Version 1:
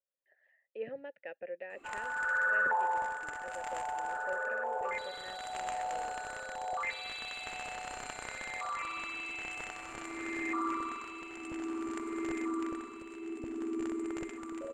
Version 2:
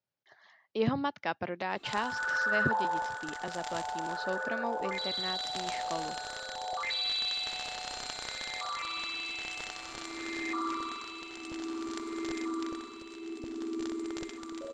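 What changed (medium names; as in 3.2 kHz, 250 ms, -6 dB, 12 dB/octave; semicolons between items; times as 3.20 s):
speech: remove vowel filter e; master: add high-order bell 4.5 kHz +14 dB 1.1 oct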